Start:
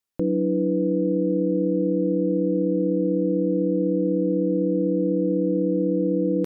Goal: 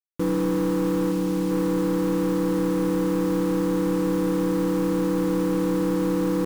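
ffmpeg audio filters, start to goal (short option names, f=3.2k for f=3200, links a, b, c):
-filter_complex "[0:a]asettb=1/sr,asplit=3[a][b][c];[a]atrim=end=1.114[d];[b]atrim=start=1.11:end=1.51,asetpts=PTS-STARTPTS,afade=t=in:d=0.004:c=qsin,afade=t=out:st=0.396:d=0.004:c=qsin,equalizer=f=630:t=o:w=2:g=-5[e];[c]atrim=start=1.506[f];[d][e]acrossfade=d=0.004:c1=hsin:c2=qsin[g];[g][f]acrossfade=d=0.004:c1=qsin:c2=hsin,asoftclip=type=tanh:threshold=-22dB,adynamicsmooth=sensitivity=3.5:basefreq=630,acrusher=bits=6:mix=0:aa=0.000001,asuperstop=centerf=640:order=4:qfactor=2.7,volume=3.5dB"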